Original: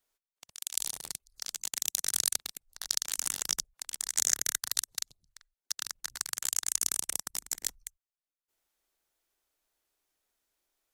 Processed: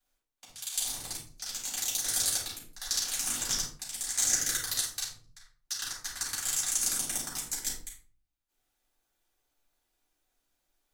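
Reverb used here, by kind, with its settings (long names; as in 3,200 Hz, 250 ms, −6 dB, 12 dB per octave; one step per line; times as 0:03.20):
rectangular room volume 330 cubic metres, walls furnished, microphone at 7.8 metres
level −8.5 dB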